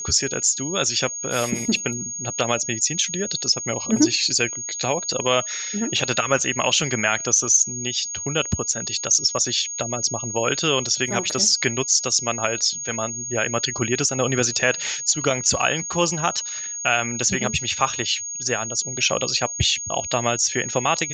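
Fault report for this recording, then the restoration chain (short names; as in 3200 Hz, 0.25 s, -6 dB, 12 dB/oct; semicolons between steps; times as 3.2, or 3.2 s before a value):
tone 6600 Hz -28 dBFS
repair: notch 6600 Hz, Q 30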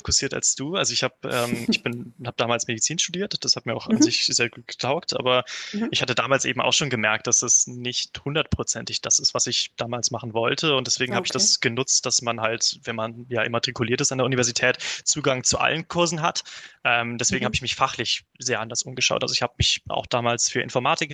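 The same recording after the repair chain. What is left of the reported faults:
none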